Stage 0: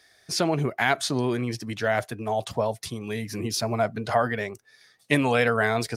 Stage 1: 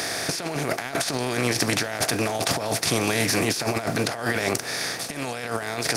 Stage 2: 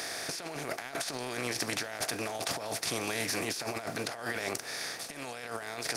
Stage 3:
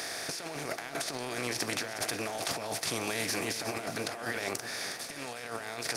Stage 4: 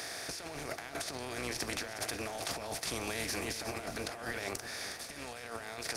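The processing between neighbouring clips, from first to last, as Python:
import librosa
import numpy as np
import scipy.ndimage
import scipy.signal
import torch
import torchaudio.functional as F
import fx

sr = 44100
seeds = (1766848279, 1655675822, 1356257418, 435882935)

y1 = fx.bin_compress(x, sr, power=0.4)
y1 = fx.high_shelf(y1, sr, hz=4600.0, db=10.0)
y1 = fx.over_compress(y1, sr, threshold_db=-22.0, ratio=-0.5)
y1 = y1 * 10.0 ** (-2.5 / 20.0)
y2 = fx.peak_eq(y1, sr, hz=110.0, db=-6.5, octaves=2.9)
y2 = y2 * 10.0 ** (-9.0 / 20.0)
y3 = fx.echo_feedback(y2, sr, ms=363, feedback_pct=43, wet_db=-11.5)
y4 = fx.octave_divider(y3, sr, octaves=2, level_db=-6.0)
y4 = y4 * 10.0 ** (-4.0 / 20.0)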